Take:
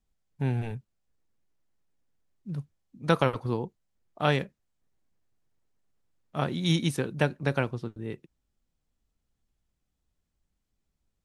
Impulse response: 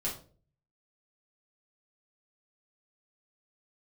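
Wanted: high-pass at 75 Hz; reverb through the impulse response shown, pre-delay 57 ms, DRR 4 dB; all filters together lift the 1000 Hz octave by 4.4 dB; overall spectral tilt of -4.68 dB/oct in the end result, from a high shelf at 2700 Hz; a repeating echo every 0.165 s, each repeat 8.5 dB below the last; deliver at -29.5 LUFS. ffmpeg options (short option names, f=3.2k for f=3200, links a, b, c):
-filter_complex "[0:a]highpass=75,equalizer=f=1k:t=o:g=5,highshelf=f=2.7k:g=6,aecho=1:1:165|330|495|660:0.376|0.143|0.0543|0.0206,asplit=2[a][b];[1:a]atrim=start_sample=2205,adelay=57[c];[b][c]afir=irnorm=-1:irlink=0,volume=-7.5dB[d];[a][d]amix=inputs=2:normalize=0,volume=-4dB"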